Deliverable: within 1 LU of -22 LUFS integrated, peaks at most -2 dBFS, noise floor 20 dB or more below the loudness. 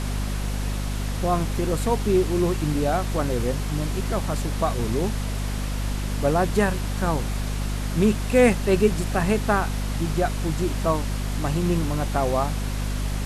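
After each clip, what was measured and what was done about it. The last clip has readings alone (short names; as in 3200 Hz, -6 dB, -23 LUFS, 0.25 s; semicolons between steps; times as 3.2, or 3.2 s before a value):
hum 50 Hz; harmonics up to 250 Hz; hum level -24 dBFS; noise floor -27 dBFS; noise floor target -45 dBFS; loudness -24.5 LUFS; peak -4.5 dBFS; loudness target -22.0 LUFS
-> notches 50/100/150/200/250 Hz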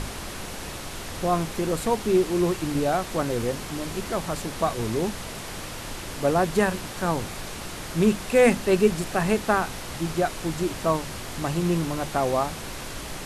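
hum none; noise floor -36 dBFS; noise floor target -46 dBFS
-> noise print and reduce 10 dB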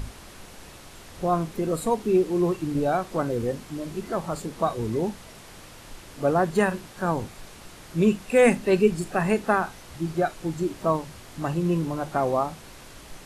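noise floor -46 dBFS; loudness -25.5 LUFS; peak -6.5 dBFS; loudness target -22.0 LUFS
-> gain +3.5 dB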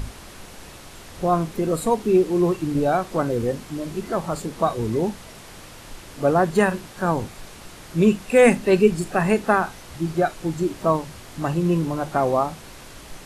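loudness -22.0 LUFS; peak -3.0 dBFS; noise floor -42 dBFS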